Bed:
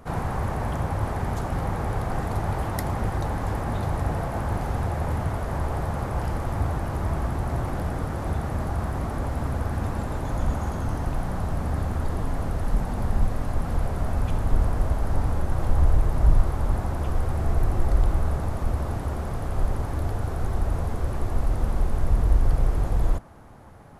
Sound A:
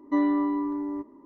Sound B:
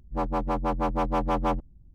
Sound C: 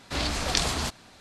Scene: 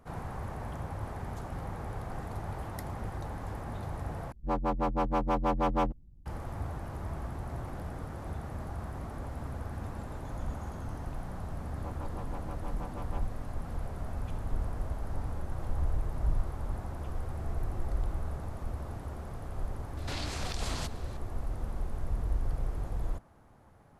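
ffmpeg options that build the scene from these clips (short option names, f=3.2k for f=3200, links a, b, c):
-filter_complex "[2:a]asplit=2[a][b];[0:a]volume=-11.5dB[c];[b]acompressor=threshold=-34dB:ratio=6:attack=3.2:release=140:knee=1:detection=peak[d];[3:a]acompressor=threshold=-29dB:ratio=4:attack=0.26:release=102:knee=1:detection=rms[e];[c]asplit=2[f][g];[f]atrim=end=4.324[h];[a]atrim=end=1.94,asetpts=PTS-STARTPTS,volume=-2.5dB[i];[g]atrim=start=6.256[j];[d]atrim=end=1.94,asetpts=PTS-STARTPTS,volume=-7dB,afade=t=in:d=0.004:c=hsin,afade=t=out:st=1.936:d=0.004:c=hsin,adelay=11670[k];[e]atrim=end=1.2,asetpts=PTS-STARTPTS,volume=-2.5dB,afade=t=in:d=0.004:c=hsin,afade=t=out:st=1.196:d=0.004:c=hsin,adelay=19970[l];[h][i]acrossfade=d=0.004:c1=hsin:c2=hsin[m];[m][j]acrossfade=d=0.004:c1=hsin:c2=hsin[n];[n][k][l]amix=inputs=3:normalize=0"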